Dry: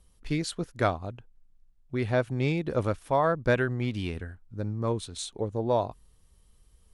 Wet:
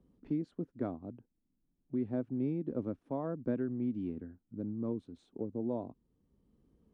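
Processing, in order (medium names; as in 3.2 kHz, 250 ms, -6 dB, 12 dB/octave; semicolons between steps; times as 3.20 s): band-pass filter 260 Hz, Q 2.7; three bands compressed up and down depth 40%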